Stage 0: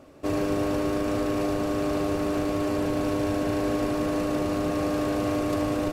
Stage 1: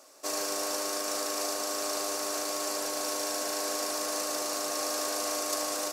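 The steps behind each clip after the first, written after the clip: high-pass 760 Hz 12 dB/octave; resonant high shelf 4 kHz +11.5 dB, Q 1.5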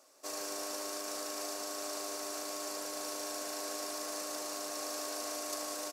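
delay 177 ms -9.5 dB; trim -8 dB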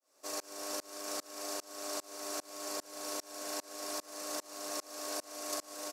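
tremolo saw up 2.5 Hz, depth 100%; trim +3 dB

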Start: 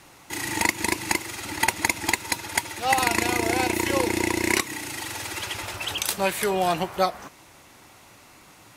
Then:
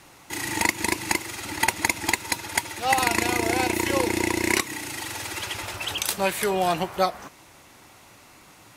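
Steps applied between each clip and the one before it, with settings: no audible change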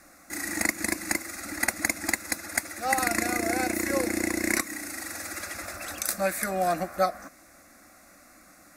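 static phaser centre 620 Hz, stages 8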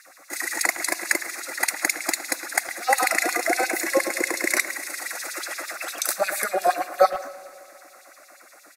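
LFO high-pass sine 8.5 Hz 400–4000 Hz; speakerphone echo 110 ms, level -11 dB; Schroeder reverb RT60 2.6 s, combs from 33 ms, DRR 16.5 dB; trim +3 dB

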